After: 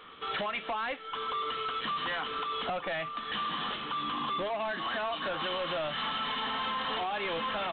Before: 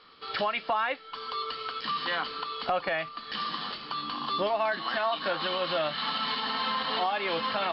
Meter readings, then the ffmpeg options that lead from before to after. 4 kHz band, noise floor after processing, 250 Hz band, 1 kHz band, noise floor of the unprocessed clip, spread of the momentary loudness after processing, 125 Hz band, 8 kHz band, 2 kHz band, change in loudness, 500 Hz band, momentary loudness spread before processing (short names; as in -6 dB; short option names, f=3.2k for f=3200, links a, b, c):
-3.0 dB, -43 dBFS, -1.5 dB, -2.5 dB, -47 dBFS, 2 LU, -0.5 dB, n/a, -2.5 dB, -3.0 dB, -4.0 dB, 6 LU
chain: -af "acompressor=threshold=-31dB:ratio=6,aresample=8000,asoftclip=type=tanh:threshold=-35dB,aresample=44100,volume=6dB"